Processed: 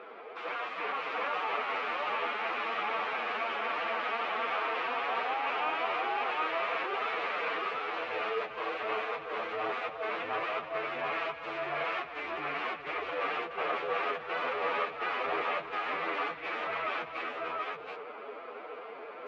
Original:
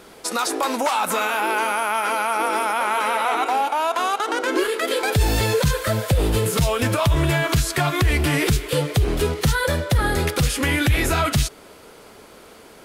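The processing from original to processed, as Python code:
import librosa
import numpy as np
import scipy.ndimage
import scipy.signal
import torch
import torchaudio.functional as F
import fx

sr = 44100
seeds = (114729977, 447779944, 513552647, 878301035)

p1 = fx.over_compress(x, sr, threshold_db=-24.0, ratio=-0.5)
p2 = (np.mod(10.0 ** (22.5 / 20.0) * p1 + 1.0, 2.0) - 1.0) / 10.0 ** (22.5 / 20.0)
p3 = fx.cabinet(p2, sr, low_hz=390.0, low_slope=12, high_hz=2700.0, hz=(460.0, 710.0, 1200.0, 2400.0), db=(7, 6, 9, 5))
p4 = p3 + fx.echo_multitap(p3, sr, ms=(86, 145, 199, 479, 491), db=(-19.0, -18.5, -9.0, -4.0, -4.5), dry=0)
p5 = fx.stretch_vocoder(p4, sr, factor=1.5)
y = p5 * 10.0 ** (-8.0 / 20.0)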